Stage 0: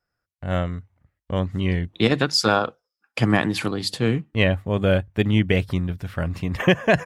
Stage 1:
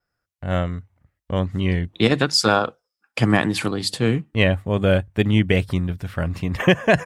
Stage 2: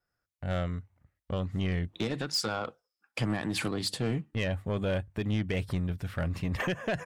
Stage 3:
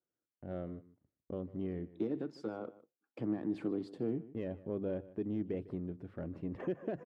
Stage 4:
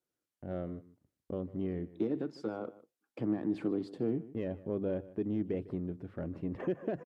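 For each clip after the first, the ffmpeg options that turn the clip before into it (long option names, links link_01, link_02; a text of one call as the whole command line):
ffmpeg -i in.wav -af "adynamicequalizer=threshold=0.00251:dfrequency=8600:dqfactor=2.7:tfrequency=8600:tqfactor=2.7:attack=5:release=100:ratio=0.375:range=2.5:mode=boostabove:tftype=bell,volume=1.5dB" out.wav
ffmpeg -i in.wav -af "alimiter=limit=-11.5dB:level=0:latency=1:release=192,asoftclip=type=tanh:threshold=-17.5dB,volume=-5dB" out.wav
ffmpeg -i in.wav -filter_complex "[0:a]bandpass=frequency=330:width_type=q:width=2.3:csg=0,asplit=2[link_01][link_02];[link_02]adelay=151.6,volume=-18dB,highshelf=frequency=4000:gain=-3.41[link_03];[link_01][link_03]amix=inputs=2:normalize=0,volume=1dB" out.wav
ffmpeg -i in.wav -af "aresample=32000,aresample=44100,volume=3dB" out.wav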